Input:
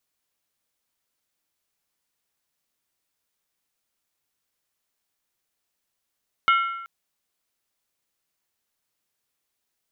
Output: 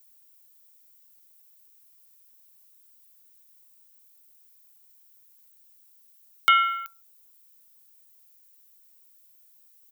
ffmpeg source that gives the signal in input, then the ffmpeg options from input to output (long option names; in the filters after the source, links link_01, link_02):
-f lavfi -i "aevalsrc='0.2*pow(10,-3*t/0.96)*sin(2*PI*1360*t)+0.1*pow(10,-3*t/0.76)*sin(2*PI*2167.8*t)+0.0501*pow(10,-3*t/0.657)*sin(2*PI*2905*t)+0.0251*pow(10,-3*t/0.634)*sin(2*PI*3122.6*t)+0.0126*pow(10,-3*t/0.589)*sin(2*PI*3608.1*t)':duration=0.38:sample_rate=44100"
-filter_complex "[0:a]aemphasis=mode=production:type=riaa,acrossover=split=350|930[link_01][link_02][link_03];[link_02]aecho=1:1:20|44|72.8|107.4|148.8:0.631|0.398|0.251|0.158|0.1[link_04];[link_01][link_04][link_03]amix=inputs=3:normalize=0"